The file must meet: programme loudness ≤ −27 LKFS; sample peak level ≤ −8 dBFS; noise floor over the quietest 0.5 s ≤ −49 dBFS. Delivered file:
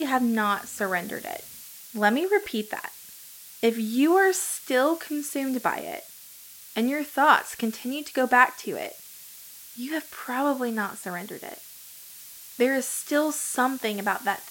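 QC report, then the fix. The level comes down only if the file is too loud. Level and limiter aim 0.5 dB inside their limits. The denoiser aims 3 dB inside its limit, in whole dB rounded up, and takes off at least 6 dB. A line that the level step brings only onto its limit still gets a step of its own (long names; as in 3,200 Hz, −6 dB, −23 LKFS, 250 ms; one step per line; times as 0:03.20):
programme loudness −25.5 LKFS: out of spec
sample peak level −4.5 dBFS: out of spec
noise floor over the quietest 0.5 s −46 dBFS: out of spec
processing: broadband denoise 6 dB, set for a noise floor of −46 dBFS
level −2 dB
brickwall limiter −8.5 dBFS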